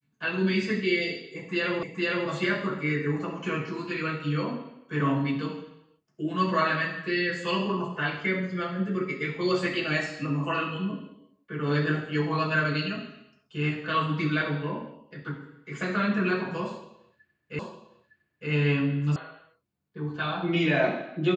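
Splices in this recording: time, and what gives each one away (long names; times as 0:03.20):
0:01.83: the same again, the last 0.46 s
0:17.59: the same again, the last 0.91 s
0:19.16: cut off before it has died away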